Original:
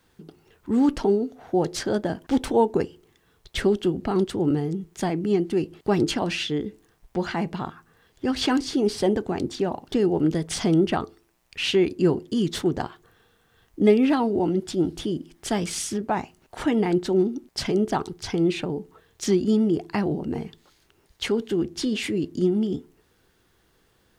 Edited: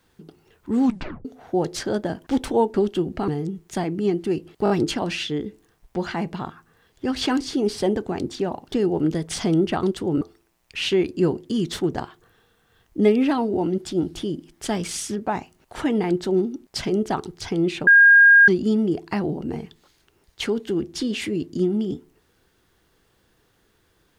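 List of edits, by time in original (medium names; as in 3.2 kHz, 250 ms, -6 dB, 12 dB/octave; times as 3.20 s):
0.82 s: tape stop 0.43 s
2.74–3.62 s: delete
4.16–4.54 s: move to 11.03 s
5.90 s: stutter 0.02 s, 4 plays
18.69–19.30 s: bleep 1.62 kHz -8 dBFS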